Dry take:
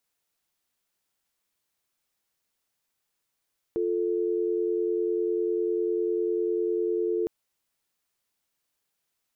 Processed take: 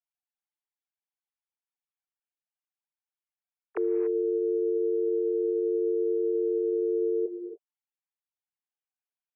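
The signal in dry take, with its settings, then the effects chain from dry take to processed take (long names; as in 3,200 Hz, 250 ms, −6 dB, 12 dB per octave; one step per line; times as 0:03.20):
call progress tone dial tone, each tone −26.5 dBFS 3.51 s
three sine waves on the formant tracks
reverb whose tail is shaped and stops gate 310 ms rising, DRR 8 dB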